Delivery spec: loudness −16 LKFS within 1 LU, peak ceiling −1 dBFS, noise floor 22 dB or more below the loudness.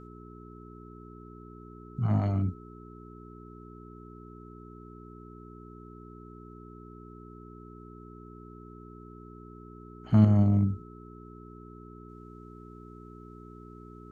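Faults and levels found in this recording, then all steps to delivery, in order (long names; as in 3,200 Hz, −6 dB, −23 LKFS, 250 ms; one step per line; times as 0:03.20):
mains hum 60 Hz; hum harmonics up to 420 Hz; level of the hum −45 dBFS; interfering tone 1,300 Hz; level of the tone −53 dBFS; integrated loudness −26.0 LKFS; sample peak −9.0 dBFS; target loudness −16.0 LKFS
→ hum removal 60 Hz, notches 7
notch filter 1,300 Hz, Q 30
level +10 dB
brickwall limiter −1 dBFS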